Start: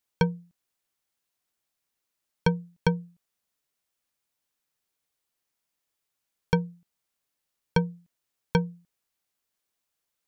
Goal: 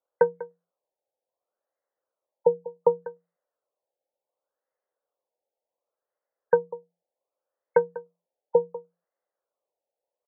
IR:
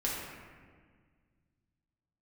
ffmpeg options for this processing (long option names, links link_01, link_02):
-filter_complex "[0:a]adynamicsmooth=sensitivity=2:basefreq=2300,highpass=frequency=530:width_type=q:width=4.9,asplit=2[link_01][link_02];[link_02]aecho=0:1:195:0.141[link_03];[link_01][link_03]amix=inputs=2:normalize=0,afftfilt=real='re*lt(b*sr/1024,900*pow(2200/900,0.5+0.5*sin(2*PI*0.68*pts/sr)))':imag='im*lt(b*sr/1024,900*pow(2200/900,0.5+0.5*sin(2*PI*0.68*pts/sr)))':win_size=1024:overlap=0.75"